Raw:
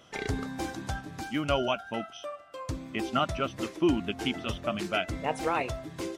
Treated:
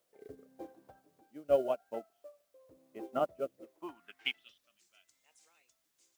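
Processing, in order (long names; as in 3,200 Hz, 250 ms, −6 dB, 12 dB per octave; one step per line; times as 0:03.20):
band-pass filter sweep 510 Hz → 7,300 Hz, 0:03.58–0:04.79
rotating-speaker cabinet horn 0.9 Hz
background noise white −66 dBFS
expander for the loud parts 2.5 to 1, over −46 dBFS
level +9 dB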